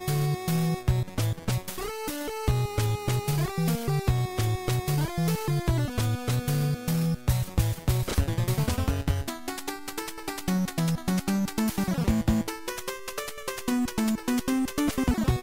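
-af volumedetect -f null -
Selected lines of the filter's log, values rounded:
mean_volume: -27.0 dB
max_volume: -9.8 dB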